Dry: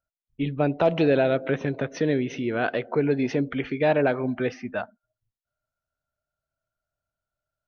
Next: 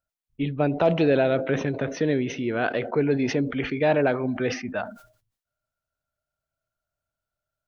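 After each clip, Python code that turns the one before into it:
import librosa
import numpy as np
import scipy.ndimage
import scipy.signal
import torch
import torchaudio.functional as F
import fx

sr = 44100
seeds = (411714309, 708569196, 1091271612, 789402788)

y = fx.sustainer(x, sr, db_per_s=110.0)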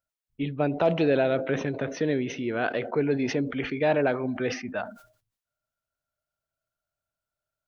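y = fx.low_shelf(x, sr, hz=120.0, db=-4.5)
y = y * librosa.db_to_amplitude(-2.0)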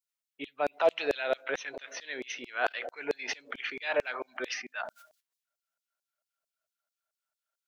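y = fx.filter_lfo_highpass(x, sr, shape='saw_down', hz=4.5, low_hz=490.0, high_hz=5800.0, q=1.0)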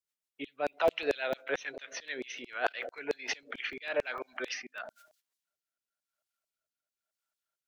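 y = fx.rotary_switch(x, sr, hz=7.0, then_hz=1.0, switch_at_s=2.91)
y = fx.buffer_crackle(y, sr, first_s=0.73, period_s=0.15, block=64, kind='zero')
y = y * librosa.db_to_amplitude(1.0)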